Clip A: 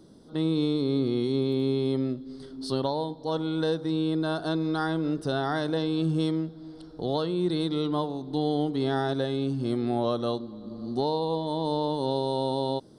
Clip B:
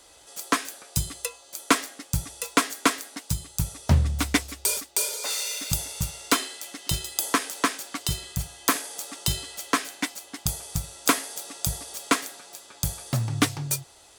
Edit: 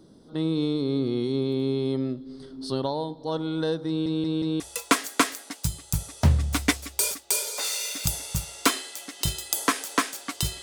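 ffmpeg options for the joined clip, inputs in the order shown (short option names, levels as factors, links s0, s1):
-filter_complex "[0:a]apad=whole_dur=10.62,atrim=end=10.62,asplit=4[s0][s1][s2][s3];[s0]atrim=end=4.062[s4];[s1]atrim=start=3.878:end=4.062[s5];[s2]atrim=start=3.878:end=4.062[s6];[s3]atrim=start=3.878:end=4.062[s7];[1:a]atrim=start=2.258:end=8.28[s8];[s4][s5]acrossfade=d=0.004:c1=hsin:c2=hsin[s9];[s9][s6]acrossfade=d=0.004:c1=hsin:c2=hsin[s10];[s10][s7]acrossfade=d=0.004:c1=hsin:c2=hsin[s11];[s11][s8]acrossfade=d=0.004:c1=hsin:c2=hsin"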